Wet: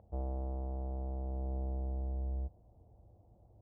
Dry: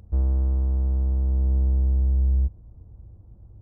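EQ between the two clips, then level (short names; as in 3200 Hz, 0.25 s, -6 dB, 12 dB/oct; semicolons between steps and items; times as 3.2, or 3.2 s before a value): band-pass 700 Hz, Q 3.3; tilt -3 dB/oct; +2.5 dB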